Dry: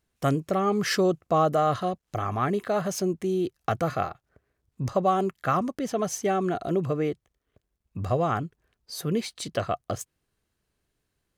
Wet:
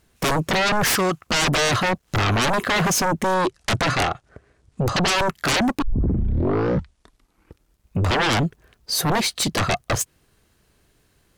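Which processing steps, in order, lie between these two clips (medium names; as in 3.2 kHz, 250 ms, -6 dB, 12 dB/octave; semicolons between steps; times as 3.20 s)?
0.86–1.27 s: resonant low shelf 710 Hz -10.5 dB, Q 1.5; 3.34–5.12 s: steep low-pass 9.9 kHz 36 dB/octave; sine folder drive 18 dB, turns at -10.5 dBFS; 5.82 s: tape start 2.18 s; trim -6 dB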